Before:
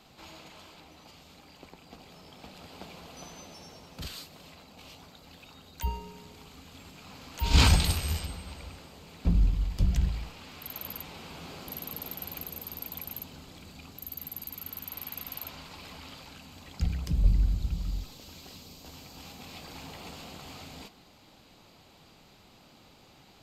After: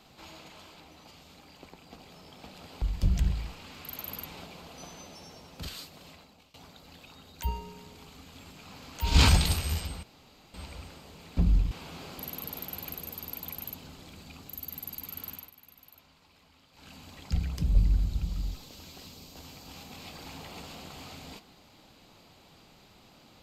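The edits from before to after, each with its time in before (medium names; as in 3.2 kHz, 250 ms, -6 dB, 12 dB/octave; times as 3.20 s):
4.50–4.93 s: fade out, to -22.5 dB
8.42 s: insert room tone 0.51 s
9.59–11.20 s: move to 2.82 s
14.79–16.42 s: dip -16 dB, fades 0.21 s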